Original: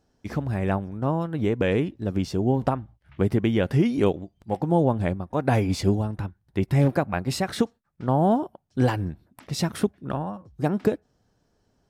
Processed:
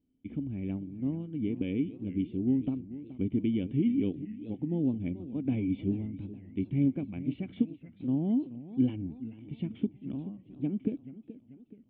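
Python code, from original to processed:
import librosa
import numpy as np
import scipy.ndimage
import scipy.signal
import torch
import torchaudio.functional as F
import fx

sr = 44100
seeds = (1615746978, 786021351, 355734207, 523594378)

y = fx.formant_cascade(x, sr, vowel='i')
y = fx.echo_warbled(y, sr, ms=432, feedback_pct=49, rate_hz=2.8, cents=183, wet_db=-15.0)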